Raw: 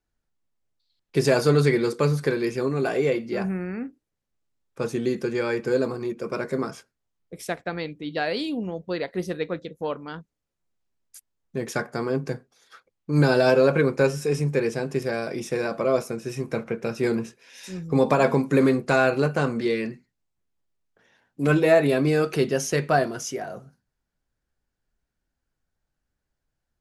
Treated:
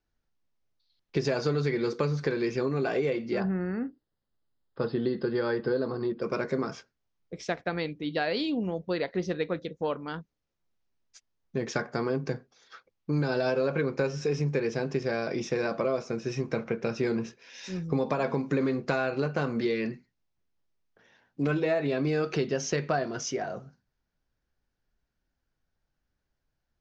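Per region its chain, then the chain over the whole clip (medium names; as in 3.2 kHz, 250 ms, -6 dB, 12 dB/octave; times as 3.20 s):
3.40–6.22 s: brick-wall FIR low-pass 5.2 kHz + peaking EQ 2.4 kHz -13 dB 0.28 oct + band-stop 2.3 kHz, Q 14
whole clip: steep low-pass 6.4 kHz 48 dB/octave; compression 6:1, threshold -24 dBFS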